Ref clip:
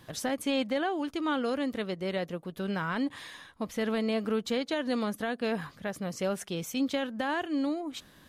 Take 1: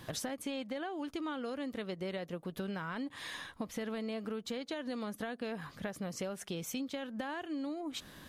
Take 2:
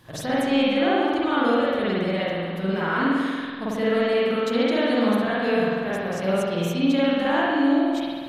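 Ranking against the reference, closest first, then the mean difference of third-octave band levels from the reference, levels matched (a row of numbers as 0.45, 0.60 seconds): 1, 2; 3.0, 8.0 decibels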